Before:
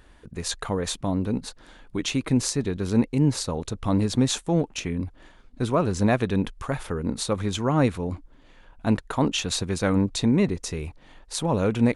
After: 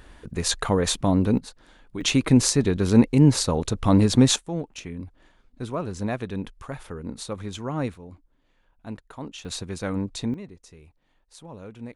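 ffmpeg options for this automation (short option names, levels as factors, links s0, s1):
-af "asetnsamples=n=441:p=0,asendcmd='1.38 volume volume -4.5dB;2.01 volume volume 5dB;4.36 volume volume -7dB;7.94 volume volume -14dB;9.45 volume volume -6dB;10.34 volume volume -18dB',volume=1.78"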